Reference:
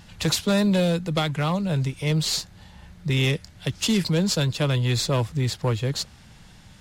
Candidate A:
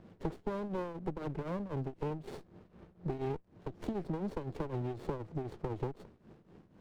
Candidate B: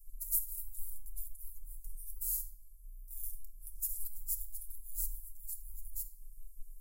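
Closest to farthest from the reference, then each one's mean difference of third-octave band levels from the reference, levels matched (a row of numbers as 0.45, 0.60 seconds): A, B; 9.0, 23.5 decibels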